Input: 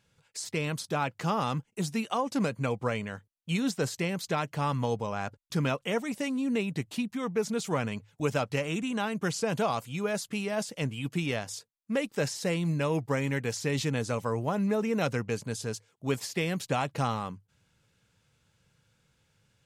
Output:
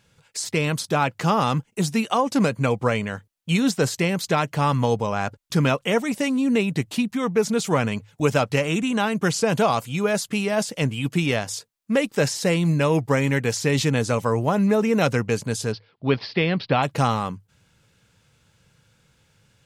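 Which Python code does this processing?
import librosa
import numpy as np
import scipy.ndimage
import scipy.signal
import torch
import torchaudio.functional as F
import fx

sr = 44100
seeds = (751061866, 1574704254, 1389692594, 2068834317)

y = fx.steep_lowpass(x, sr, hz=4900.0, slope=72, at=(15.71, 16.82), fade=0.02)
y = y * librosa.db_to_amplitude(8.5)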